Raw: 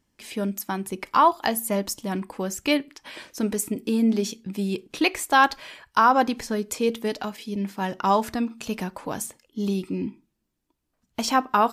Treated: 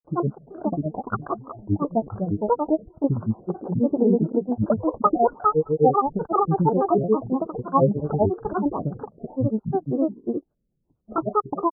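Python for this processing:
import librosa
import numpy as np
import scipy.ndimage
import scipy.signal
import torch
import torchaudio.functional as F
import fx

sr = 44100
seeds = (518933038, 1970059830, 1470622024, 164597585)

y = scipy.signal.sosfilt(scipy.signal.cheby1(10, 1.0, 840.0, 'lowpass', fs=sr, output='sos'), x)
y = fx.granulator(y, sr, seeds[0], grain_ms=100.0, per_s=28.0, spray_ms=395.0, spread_st=12)
y = F.gain(torch.from_numpy(y), 8.5).numpy()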